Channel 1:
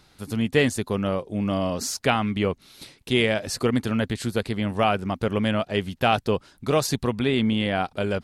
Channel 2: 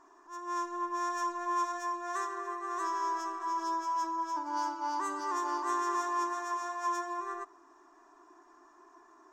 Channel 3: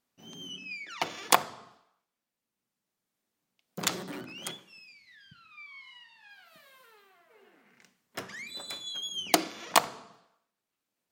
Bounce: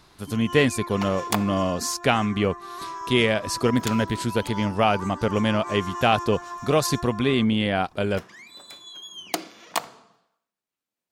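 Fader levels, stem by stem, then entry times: +1.0, -1.5, -4.0 dB; 0.00, 0.00, 0.00 s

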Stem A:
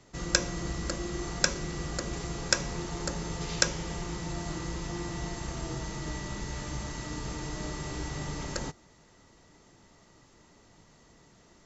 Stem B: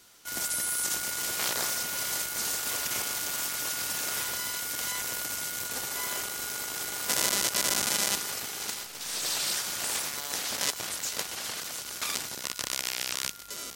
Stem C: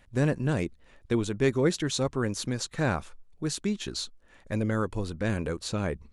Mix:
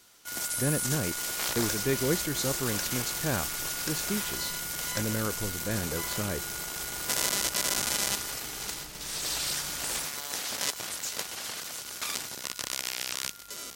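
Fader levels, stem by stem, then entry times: -13.0, -1.5, -4.0 dB; 1.35, 0.00, 0.45 s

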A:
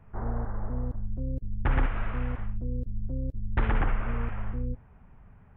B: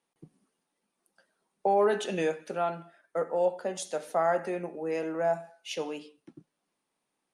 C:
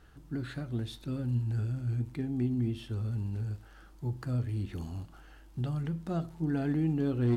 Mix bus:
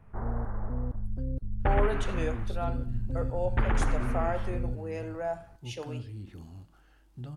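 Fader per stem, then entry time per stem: -1.0, -5.5, -7.5 dB; 0.00, 0.00, 1.60 s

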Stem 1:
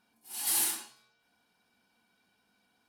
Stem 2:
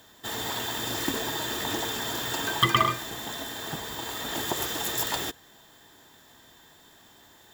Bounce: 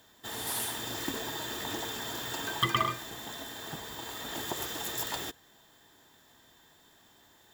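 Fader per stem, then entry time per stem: -7.5, -6.0 dB; 0.00, 0.00 s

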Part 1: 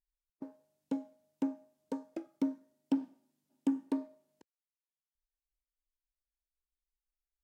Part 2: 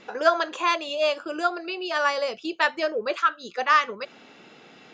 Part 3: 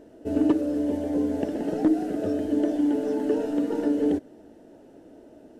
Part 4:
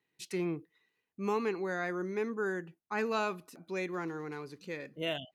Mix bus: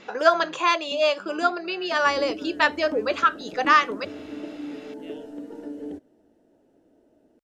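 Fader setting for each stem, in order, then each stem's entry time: -6.0, +2.0, -12.0, -14.0 dB; 0.00, 0.00, 1.80, 0.00 s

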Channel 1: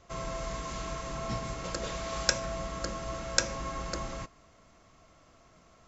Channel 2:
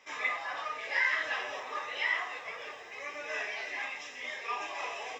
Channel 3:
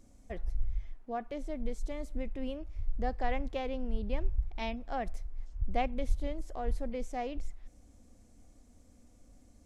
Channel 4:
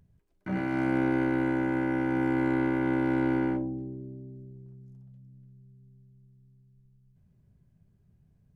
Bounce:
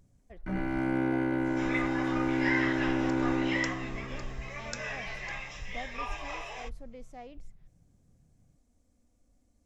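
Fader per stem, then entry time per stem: -14.5, -2.0, -10.0, -2.5 dB; 1.35, 1.50, 0.00, 0.00 s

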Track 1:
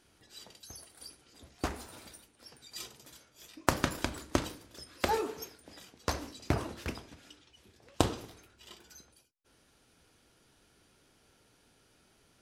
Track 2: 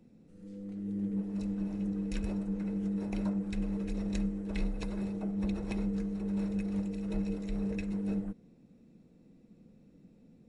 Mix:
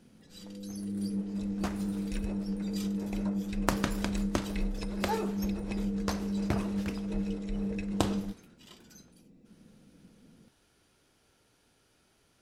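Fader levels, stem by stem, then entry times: -2.0, +0.5 dB; 0.00, 0.00 s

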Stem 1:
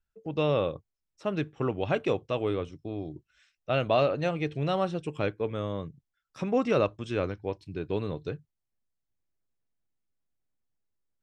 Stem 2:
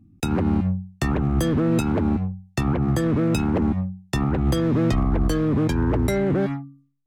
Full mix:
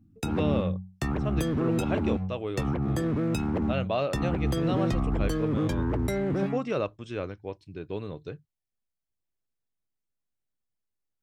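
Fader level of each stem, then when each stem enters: -4.0, -6.5 dB; 0.00, 0.00 s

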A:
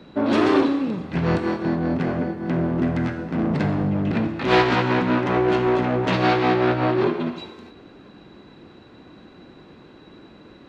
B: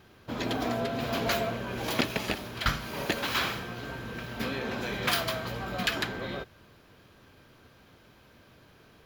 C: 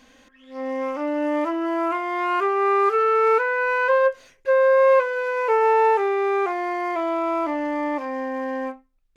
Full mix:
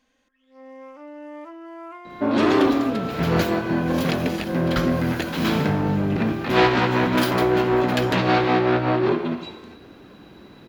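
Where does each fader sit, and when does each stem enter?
0.0, 0.0, -15.0 dB; 2.05, 2.10, 0.00 s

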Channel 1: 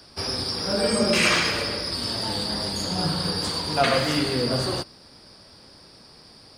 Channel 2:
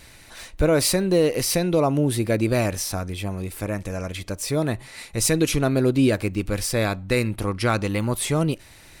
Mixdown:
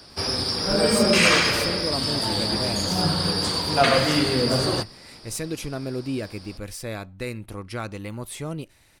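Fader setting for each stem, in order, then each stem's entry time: +2.5, -10.0 dB; 0.00, 0.10 s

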